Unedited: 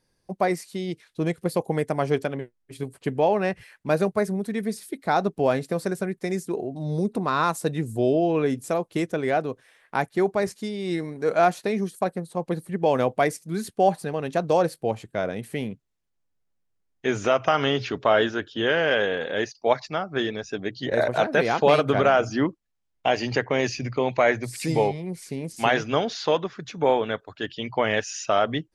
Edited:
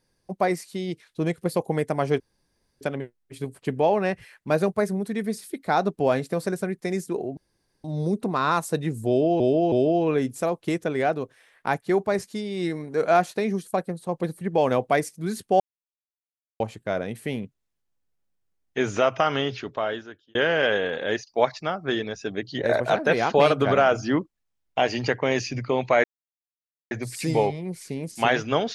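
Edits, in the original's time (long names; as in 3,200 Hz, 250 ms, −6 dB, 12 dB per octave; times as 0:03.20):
0:02.20: splice in room tone 0.61 s
0:06.76: splice in room tone 0.47 s
0:08.00–0:08.32: repeat, 3 plays
0:13.88–0:14.88: silence
0:17.38–0:18.63: fade out
0:24.32: splice in silence 0.87 s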